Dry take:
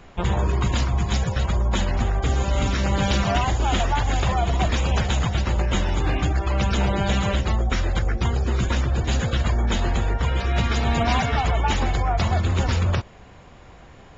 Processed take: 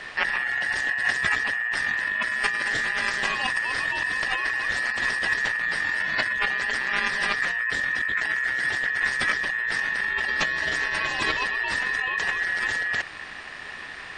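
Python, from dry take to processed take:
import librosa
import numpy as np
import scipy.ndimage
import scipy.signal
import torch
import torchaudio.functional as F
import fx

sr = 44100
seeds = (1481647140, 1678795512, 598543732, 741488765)

y = fx.peak_eq(x, sr, hz=270.0, db=-2.5, octaves=2.8)
y = fx.over_compress(y, sr, threshold_db=-28.0, ratio=-1.0)
y = y * np.sin(2.0 * np.pi * 1800.0 * np.arange(len(y)) / sr)
y = y * 10.0 ** (5.0 / 20.0)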